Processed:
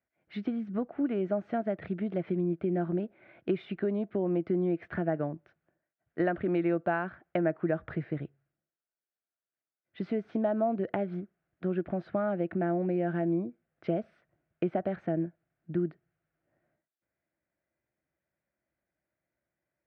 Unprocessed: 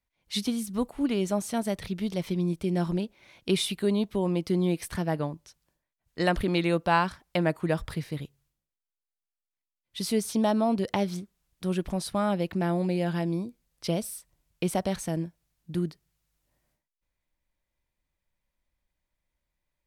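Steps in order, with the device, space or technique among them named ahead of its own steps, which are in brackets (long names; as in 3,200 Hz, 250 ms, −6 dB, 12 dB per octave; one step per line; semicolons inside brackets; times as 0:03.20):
bass amplifier (downward compressor 4 to 1, threshold −29 dBFS, peak gain reduction 10 dB; loudspeaker in its box 83–2,100 Hz, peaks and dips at 91 Hz −7 dB, 340 Hz +7 dB, 660 Hz +8 dB, 980 Hz −9 dB, 1,500 Hz +6 dB)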